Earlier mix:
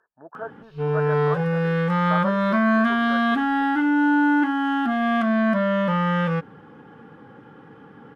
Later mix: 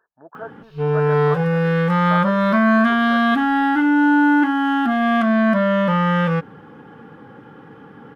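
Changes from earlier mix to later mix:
background +4.0 dB; master: remove low-pass 12 kHz 12 dB/octave

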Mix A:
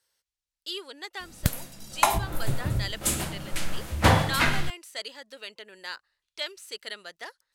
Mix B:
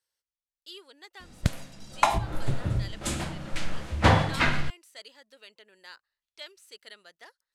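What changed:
speech -10.0 dB; background: add distance through air 75 m

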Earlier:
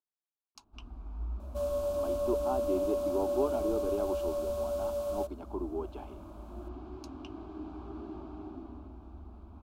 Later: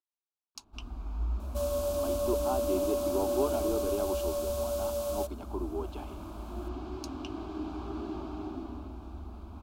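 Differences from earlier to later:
first sound +5.0 dB; master: add treble shelf 2.5 kHz +11 dB

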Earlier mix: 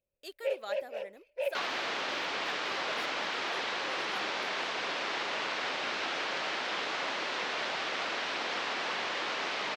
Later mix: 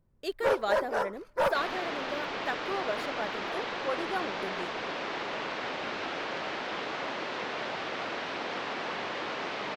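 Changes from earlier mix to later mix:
speech +10.5 dB; first sound: remove two resonant band-passes 1.2 kHz, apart 2.2 oct; master: add tilt EQ -2.5 dB/octave

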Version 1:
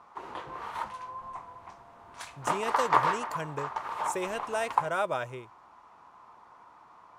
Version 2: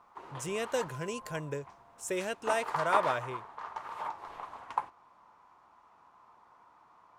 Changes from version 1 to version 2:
speech: entry -2.05 s; background -6.0 dB

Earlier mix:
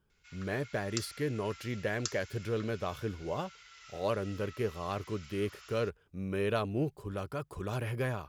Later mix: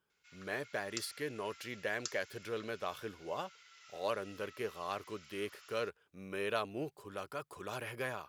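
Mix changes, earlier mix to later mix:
background -4.5 dB; master: add high-pass 710 Hz 6 dB/octave

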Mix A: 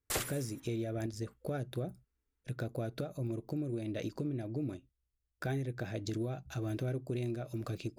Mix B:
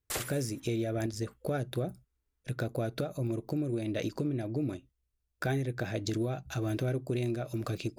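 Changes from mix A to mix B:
speech +6.5 dB; master: add bass shelf 430 Hz -3 dB

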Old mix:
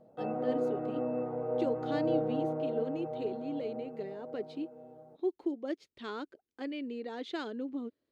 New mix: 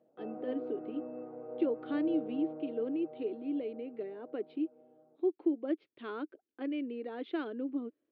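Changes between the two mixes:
background -10.0 dB; master: add cabinet simulation 180–2900 Hz, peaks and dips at 190 Hz -5 dB, 310 Hz +6 dB, 900 Hz -4 dB, 1.9 kHz -4 dB

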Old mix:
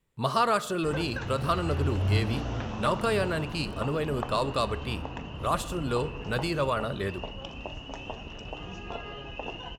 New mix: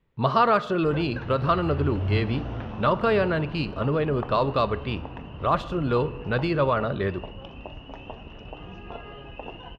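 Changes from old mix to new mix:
speech +6.0 dB; master: add distance through air 270 m

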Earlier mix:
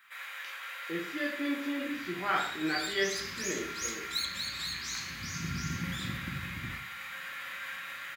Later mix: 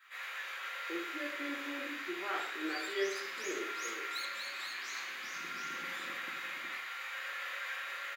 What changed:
first sound: send +11.0 dB; master: add ladder high-pass 320 Hz, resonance 50%

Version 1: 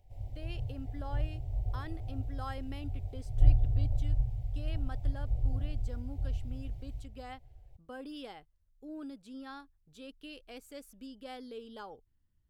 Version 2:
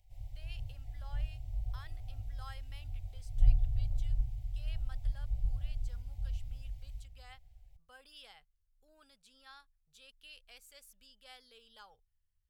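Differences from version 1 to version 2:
background +3.5 dB; master: add amplifier tone stack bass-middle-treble 10-0-10

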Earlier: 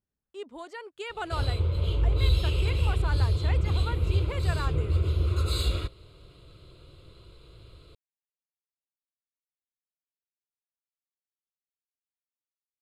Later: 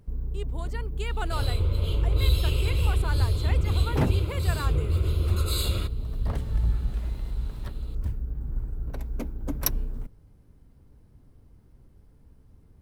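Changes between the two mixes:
first sound: unmuted; master: remove distance through air 52 m

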